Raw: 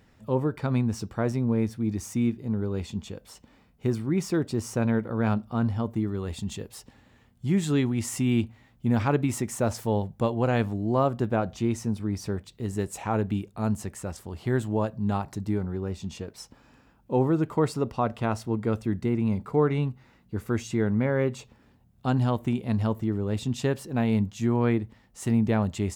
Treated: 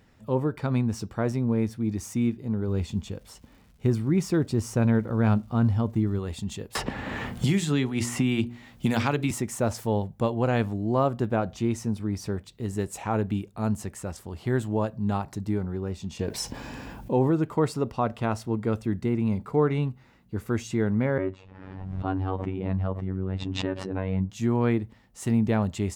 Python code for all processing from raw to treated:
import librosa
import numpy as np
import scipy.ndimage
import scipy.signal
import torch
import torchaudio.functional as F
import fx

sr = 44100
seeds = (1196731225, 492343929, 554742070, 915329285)

y = fx.low_shelf(x, sr, hz=140.0, db=8.0, at=(2.67, 6.18), fade=0.02)
y = fx.dmg_crackle(y, sr, seeds[0], per_s=390.0, level_db=-54.0, at=(2.67, 6.18), fade=0.02)
y = fx.chain(y, sr, fx.peak_eq(hz=3800.0, db=4.0, octaves=2.9),
    fx.hum_notches(base_hz=60, count=9),
    fx.band_squash(depth_pct=100), at=(6.75, 9.31))
y = fx.chain(y, sr, fx.notch(hz=1300.0, q=5.9),
    fx.env_flatten(amount_pct=50), at=(16.19, 17.31))
y = fx.chain(y, sr, fx.lowpass(hz=2000.0, slope=12),
    fx.robotise(hz=94.4),
    fx.pre_swell(db_per_s=38.0), at=(21.18, 24.3))